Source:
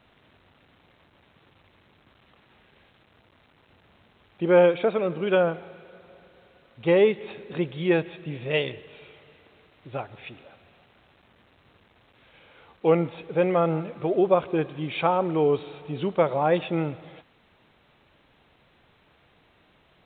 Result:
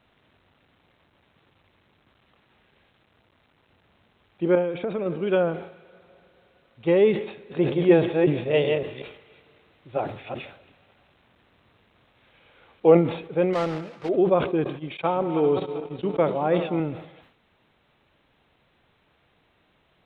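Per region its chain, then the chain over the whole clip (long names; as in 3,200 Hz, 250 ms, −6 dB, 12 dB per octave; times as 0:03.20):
0:04.55–0:05.06: downward compressor 5 to 1, threshold −24 dBFS + bass and treble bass +3 dB, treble −7 dB
0:07.32–0:12.97: delay that plays each chunk backwards 189 ms, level −3 dB + dynamic equaliser 640 Hz, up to +7 dB, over −39 dBFS, Q 0.96
0:13.53–0:14.09: one scale factor per block 3 bits + low-pass filter 3,100 Hz + low-shelf EQ 490 Hz −6 dB
0:14.64–0:16.80: feedback delay that plays each chunk backwards 194 ms, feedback 66%, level −10.5 dB + noise gate −30 dBFS, range −21 dB + low-shelf EQ 61 Hz −9.5 dB
whole clip: dynamic equaliser 280 Hz, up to +6 dB, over −36 dBFS, Q 0.72; level that may fall only so fast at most 93 dB per second; level −4 dB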